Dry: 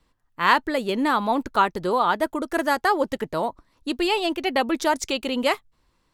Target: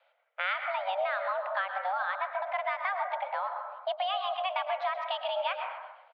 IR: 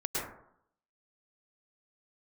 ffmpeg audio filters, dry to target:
-filter_complex "[0:a]asplit=2[a][b];[1:a]atrim=start_sample=2205[c];[b][c]afir=irnorm=-1:irlink=0,volume=-11.5dB[d];[a][d]amix=inputs=2:normalize=0,acompressor=threshold=-33dB:ratio=3,asplit=6[e][f][g][h][i][j];[f]adelay=127,afreqshift=-59,volume=-16dB[k];[g]adelay=254,afreqshift=-118,volume=-21.8dB[l];[h]adelay=381,afreqshift=-177,volume=-27.7dB[m];[i]adelay=508,afreqshift=-236,volume=-33.5dB[n];[j]adelay=635,afreqshift=-295,volume=-39.4dB[o];[e][k][l][m][n][o]amix=inputs=6:normalize=0,highpass=f=170:t=q:w=0.5412,highpass=f=170:t=q:w=1.307,lowpass=f=3k:t=q:w=0.5176,lowpass=f=3k:t=q:w=0.7071,lowpass=f=3k:t=q:w=1.932,afreqshift=370,equalizer=f=1.3k:t=o:w=1.4:g=-4.5,volume=3dB"

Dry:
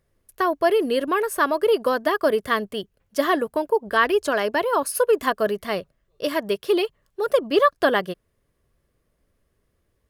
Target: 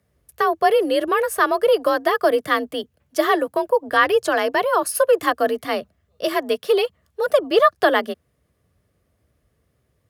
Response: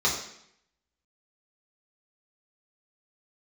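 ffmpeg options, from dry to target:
-af "afreqshift=45,volume=2.5dB"

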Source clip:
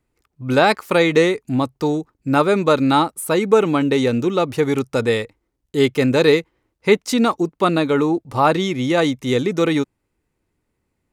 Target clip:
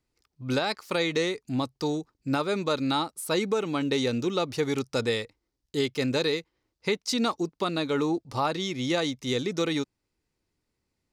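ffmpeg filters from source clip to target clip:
-af "equalizer=f=4.9k:w=1.2:g=11.5,alimiter=limit=-7.5dB:level=0:latency=1:release=467,volume=-8dB"

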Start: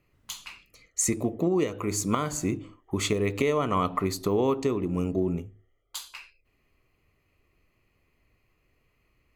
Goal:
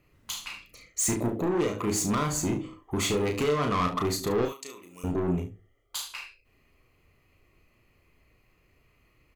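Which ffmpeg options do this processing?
-filter_complex "[0:a]asettb=1/sr,asplit=3[a][b][c];[a]atrim=end=4.454[d];[b]atrim=start=4.45:end=5.04,asetpts=PTS-STARTPTS,afade=t=in:d=0.004:c=qsin,afade=t=out:st=0.586:d=0.004:c=qsin,aderivative[e];[c]atrim=start=5.036[f];[d][e]acrossfade=d=0.004:c1=hsin:c2=qsin[g];[g][f]acrossfade=d=0.004:c1=qsin:c2=hsin,asoftclip=type=tanh:threshold=-27dB,aecho=1:1:34|72:0.562|0.237,volume=3.5dB"

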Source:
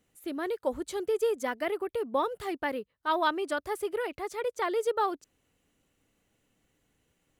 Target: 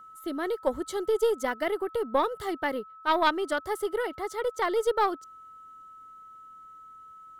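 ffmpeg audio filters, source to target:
-af "aeval=exprs='val(0)+0.00398*sin(2*PI*1300*n/s)':c=same,asuperstop=centerf=2500:order=4:qfactor=4.6,aeval=exprs='0.2*(cos(1*acos(clip(val(0)/0.2,-1,1)))-cos(1*PI/2))+0.0355*(cos(2*acos(clip(val(0)/0.2,-1,1)))-cos(2*PI/2))+0.00316*(cos(7*acos(clip(val(0)/0.2,-1,1)))-cos(7*PI/2))':c=same,volume=3dB"

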